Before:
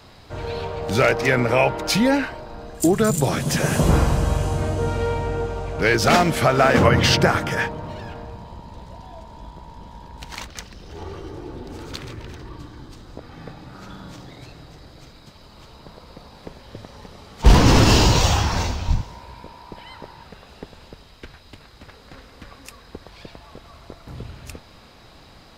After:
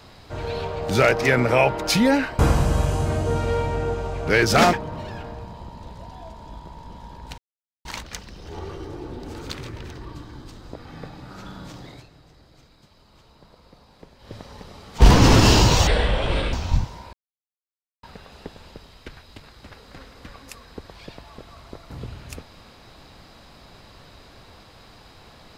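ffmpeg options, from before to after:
ffmpeg -i in.wav -filter_complex "[0:a]asplit=10[link_01][link_02][link_03][link_04][link_05][link_06][link_07][link_08][link_09][link_10];[link_01]atrim=end=2.392[link_11];[link_02]atrim=start=3.908:end=6.252[link_12];[link_03]atrim=start=7.638:end=10.29,asetpts=PTS-STARTPTS,afade=type=out:start_time=2.648:duration=0.004:curve=hsin,apad=pad_dur=0.47[link_13];[link_04]atrim=start=10.29:end=14.51,asetpts=PTS-STARTPTS,afade=type=in:duration=0.004:curve=hsin,afade=type=out:start_time=4.06:duration=0.16:silence=0.354813[link_14];[link_05]atrim=start=14.51:end=16.62,asetpts=PTS-STARTPTS,volume=-9dB[link_15];[link_06]atrim=start=16.62:end=18.314,asetpts=PTS-STARTPTS,afade=type=in:duration=0.16:silence=0.354813[link_16];[link_07]atrim=start=18.31:end=18.7,asetpts=PTS-STARTPTS,asetrate=26019,aresample=44100[link_17];[link_08]atrim=start=18.696:end=19.3,asetpts=PTS-STARTPTS,afade=type=out:start_time=0.6:duration=0.004:curve=hsin[link_18];[link_09]atrim=start=19.3:end=20.2,asetpts=PTS-STARTPTS,volume=0[link_19];[link_10]atrim=start=20.2,asetpts=PTS-STARTPTS,afade=type=in:duration=0.004:curve=hsin[link_20];[link_11][link_12]acrossfade=duration=0.004:curve1=hsin:curve2=hsin[link_21];[link_13][link_14][link_15][link_16]concat=n=4:v=0:a=1[link_22];[link_21][link_22]acrossfade=duration=0.004:curve1=hsin:curve2=hsin[link_23];[link_23][link_17]acrossfade=duration=0.004:curve1=hsin:curve2=hsin[link_24];[link_18][link_19][link_20]concat=n=3:v=0:a=1[link_25];[link_24][link_25]acrossfade=duration=0.004:curve1=hsin:curve2=hsin" out.wav

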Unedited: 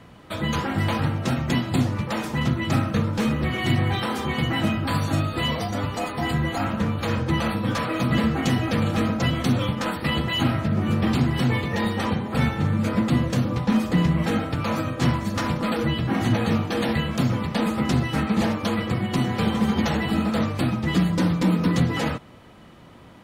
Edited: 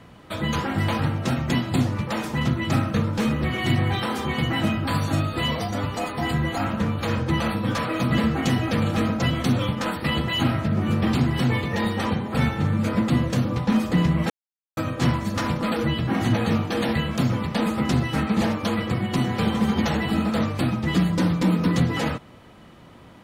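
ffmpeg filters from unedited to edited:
ffmpeg -i in.wav -filter_complex "[0:a]asplit=3[link_01][link_02][link_03];[link_01]atrim=end=14.3,asetpts=PTS-STARTPTS,afade=type=out:start_time=14.296:duration=0.004:curve=hsin[link_04];[link_02]atrim=start=14.3:end=14.77,asetpts=PTS-STARTPTS,volume=0[link_05];[link_03]atrim=start=14.77,asetpts=PTS-STARTPTS,afade=type=in:duration=0.004:curve=hsin[link_06];[link_04][link_05][link_06]concat=n=3:v=0:a=1" out.wav

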